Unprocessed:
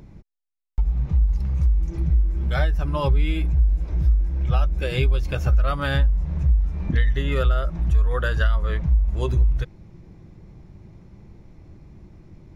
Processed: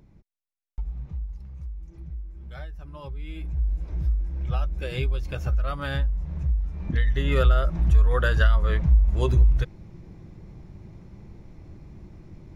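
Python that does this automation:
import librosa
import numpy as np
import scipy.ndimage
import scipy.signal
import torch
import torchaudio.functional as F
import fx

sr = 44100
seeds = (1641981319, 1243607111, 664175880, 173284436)

y = fx.gain(x, sr, db=fx.line((0.83, -10.0), (1.5, -17.0), (3.13, -17.0), (3.68, -6.0), (6.78, -6.0), (7.38, 1.0)))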